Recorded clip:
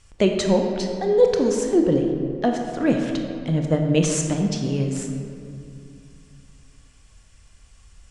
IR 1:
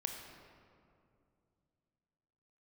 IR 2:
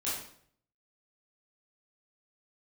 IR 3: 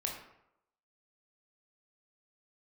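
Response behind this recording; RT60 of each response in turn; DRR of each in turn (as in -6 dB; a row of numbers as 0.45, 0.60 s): 1; 2.5, 0.60, 0.80 s; 3.0, -9.5, -0.5 dB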